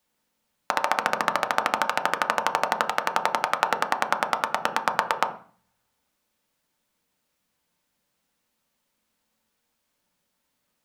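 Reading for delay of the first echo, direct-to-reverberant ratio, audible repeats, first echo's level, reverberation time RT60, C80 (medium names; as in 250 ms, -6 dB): no echo, 4.5 dB, no echo, no echo, 0.40 s, 16.5 dB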